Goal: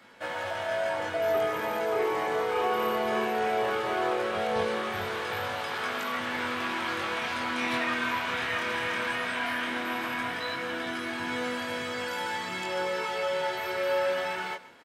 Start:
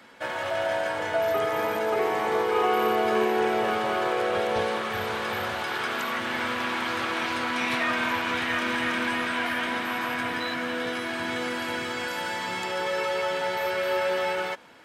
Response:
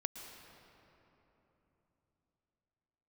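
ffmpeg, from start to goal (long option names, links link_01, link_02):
-filter_complex "[0:a]flanger=delay=20:depth=6.2:speed=0.17,asplit=2[link_01][link_02];[link_02]aecho=0:1:132:0.133[link_03];[link_01][link_03]amix=inputs=2:normalize=0"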